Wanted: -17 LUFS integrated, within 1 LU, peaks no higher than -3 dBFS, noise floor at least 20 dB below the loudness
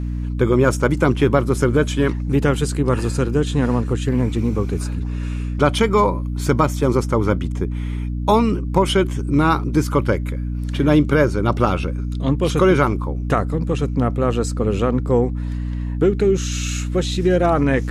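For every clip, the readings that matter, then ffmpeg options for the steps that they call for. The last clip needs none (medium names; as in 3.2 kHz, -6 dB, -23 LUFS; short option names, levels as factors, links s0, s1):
hum 60 Hz; highest harmonic 300 Hz; hum level -21 dBFS; loudness -19.5 LUFS; peak level -3.0 dBFS; loudness target -17.0 LUFS
-> -af "bandreject=f=60:t=h:w=6,bandreject=f=120:t=h:w=6,bandreject=f=180:t=h:w=6,bandreject=f=240:t=h:w=6,bandreject=f=300:t=h:w=6"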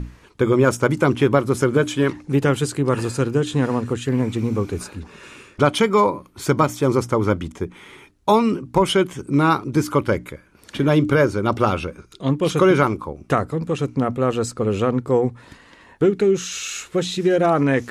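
hum not found; loudness -20.0 LUFS; peak level -3.5 dBFS; loudness target -17.0 LUFS
-> -af "volume=1.41,alimiter=limit=0.708:level=0:latency=1"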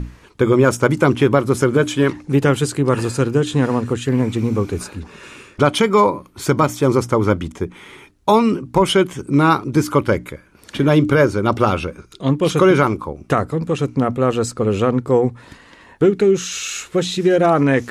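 loudness -17.5 LUFS; peak level -3.0 dBFS; noise floor -47 dBFS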